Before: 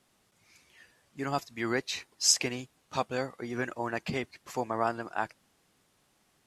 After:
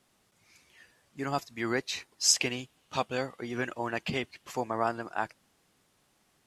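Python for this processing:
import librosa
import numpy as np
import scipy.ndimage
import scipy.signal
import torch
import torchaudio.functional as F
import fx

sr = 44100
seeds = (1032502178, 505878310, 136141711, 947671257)

y = fx.peak_eq(x, sr, hz=3000.0, db=7.0, octaves=0.5, at=(2.34, 4.52))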